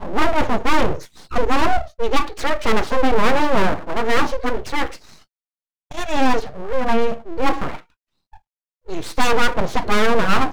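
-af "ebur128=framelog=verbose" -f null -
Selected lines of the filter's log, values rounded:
Integrated loudness:
  I:         -21.0 LUFS
  Threshold: -31.7 LUFS
Loudness range:
  LRA:         4.1 LU
  Threshold: -42.4 LUFS
  LRA low:   -24.5 LUFS
  LRA high:  -20.4 LUFS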